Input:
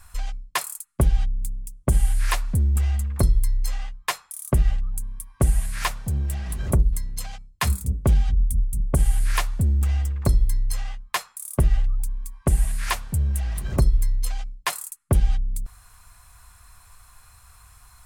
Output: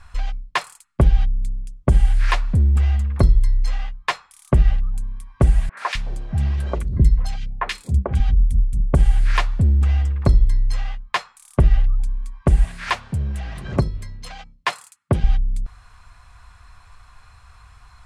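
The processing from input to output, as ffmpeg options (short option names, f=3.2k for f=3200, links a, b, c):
-filter_complex "[0:a]asettb=1/sr,asplit=3[a][b][c];[a]atrim=end=5.694[d];[b]atrim=start=5.69:end=8.2,asetpts=PTS-STARTPTS,afade=t=in:d=0.004:c=qsin,afade=t=out:st=2.506:d=0.004:c=qsin,acrossover=split=350|1700[e][f][g];[g]adelay=80[h];[e]adelay=260[i];[i][f][h]amix=inputs=3:normalize=0,atrim=end_sample=110691[j];[c]atrim=start=8.196[k];[d][j]acrossfade=d=0.004:c1=hsin:c2=qsin[l];[l][k]acrossfade=d=0.004:c1=qsin:c2=hsin,asettb=1/sr,asplit=3[m][n][o];[m]atrim=end=12.654[p];[n]atrim=start=12.65:end=15.24,asetpts=PTS-STARTPTS,afade=t=in:d=0.004:c=qsin,afade=t=out:st=2.586:d=0.004:c=qsin,highpass=97[q];[o]atrim=start=15.236[r];[p][q]acrossfade=d=0.004:c1=hsin:c2=qsin[s];[s][r]acrossfade=d=0.004:c1=qsin:c2=hsin,lowpass=4k,volume=4.5dB"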